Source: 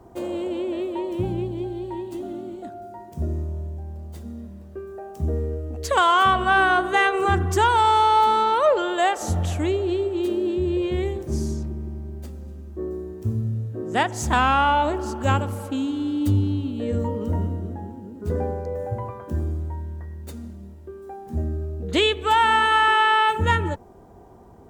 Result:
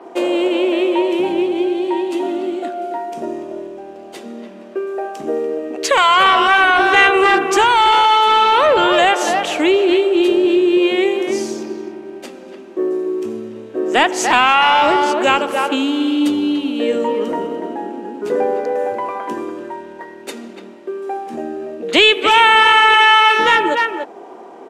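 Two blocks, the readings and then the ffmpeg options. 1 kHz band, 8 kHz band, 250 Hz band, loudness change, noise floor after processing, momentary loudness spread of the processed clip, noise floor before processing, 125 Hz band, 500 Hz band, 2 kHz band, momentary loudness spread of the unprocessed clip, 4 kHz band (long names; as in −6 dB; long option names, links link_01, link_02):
+6.5 dB, +8.0 dB, +8.5 dB, +8.0 dB, −37 dBFS, 19 LU, −43 dBFS, −17.5 dB, +9.0 dB, +9.5 dB, 20 LU, +12.0 dB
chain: -filter_complex "[0:a]asplit=2[link_01][link_02];[link_02]adelay=290,highpass=300,lowpass=3400,asoftclip=type=hard:threshold=-14.5dB,volume=-8dB[link_03];[link_01][link_03]amix=inputs=2:normalize=0,asplit=2[link_04][link_05];[link_05]acompressor=threshold=-29dB:ratio=6,volume=-2dB[link_06];[link_04][link_06]amix=inputs=2:normalize=0,highpass=frequency=300:width=0.5412,highpass=frequency=300:width=1.3066,apsyclip=16.5dB,equalizer=frequency=2600:width_type=o:width=0.81:gain=8,adynamicsmooth=sensitivity=6.5:basefreq=6000,aresample=32000,aresample=44100,adynamicequalizer=threshold=0.0447:dfrequency=7200:dqfactor=1.9:tfrequency=7200:tqfactor=1.9:attack=5:release=100:ratio=0.375:range=1.5:mode=cutabove:tftype=bell,volume=-8dB"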